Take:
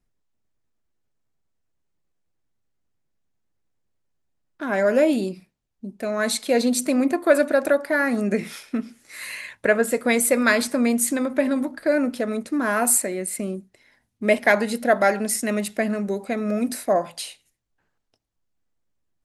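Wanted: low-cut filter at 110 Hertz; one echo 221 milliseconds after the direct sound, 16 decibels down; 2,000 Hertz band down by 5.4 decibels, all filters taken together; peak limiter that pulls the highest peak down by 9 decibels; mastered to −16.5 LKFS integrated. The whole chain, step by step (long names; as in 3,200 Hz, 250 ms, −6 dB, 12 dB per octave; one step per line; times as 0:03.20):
high-pass filter 110 Hz
parametric band 2,000 Hz −7 dB
brickwall limiter −15 dBFS
single-tap delay 221 ms −16 dB
level +9 dB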